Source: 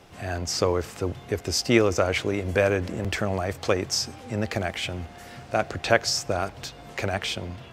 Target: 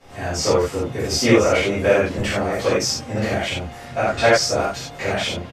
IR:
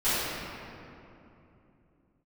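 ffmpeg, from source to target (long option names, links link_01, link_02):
-filter_complex "[0:a]atempo=1.4[link_01];[1:a]atrim=start_sample=2205,atrim=end_sample=3087,asetrate=27342,aresample=44100[link_02];[link_01][link_02]afir=irnorm=-1:irlink=0,volume=-6.5dB"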